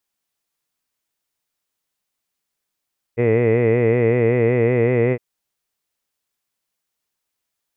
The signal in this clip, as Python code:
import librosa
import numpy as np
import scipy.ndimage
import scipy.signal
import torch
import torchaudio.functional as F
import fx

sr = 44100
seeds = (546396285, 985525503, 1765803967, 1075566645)

y = fx.formant_vowel(sr, seeds[0], length_s=2.01, hz=115.0, glide_st=1.0, vibrato_hz=5.3, vibrato_st=0.9, f1_hz=450.0, f2_hz=2000.0, f3_hz=2500.0)